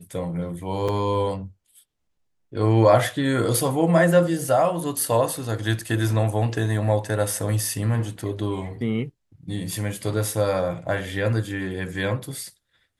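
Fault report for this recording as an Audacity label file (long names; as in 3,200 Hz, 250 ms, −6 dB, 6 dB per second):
0.880000	0.890000	drop-out 5.5 ms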